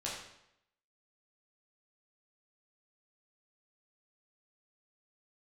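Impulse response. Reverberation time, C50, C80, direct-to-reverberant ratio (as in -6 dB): 0.80 s, 2.0 dB, 5.5 dB, -6.0 dB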